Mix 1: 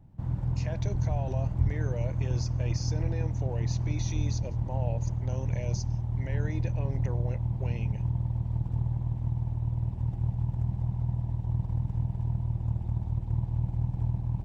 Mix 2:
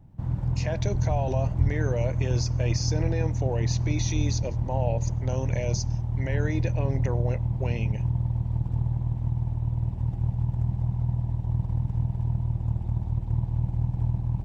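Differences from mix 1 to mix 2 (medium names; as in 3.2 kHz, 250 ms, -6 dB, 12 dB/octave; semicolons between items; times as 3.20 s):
speech +8.0 dB; background: send on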